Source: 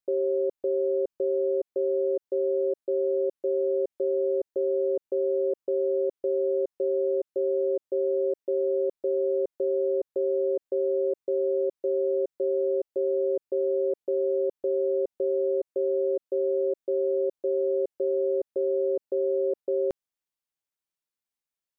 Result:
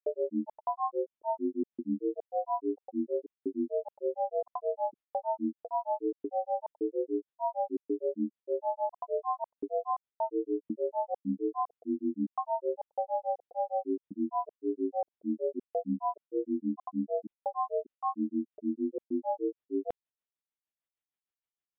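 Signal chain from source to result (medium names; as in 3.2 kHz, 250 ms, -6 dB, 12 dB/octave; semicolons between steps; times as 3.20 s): granulator 147 ms, grains 6.5 per s, spray 28 ms, pitch spread up and down by 12 st; resampled via 8 kHz; trim -2.5 dB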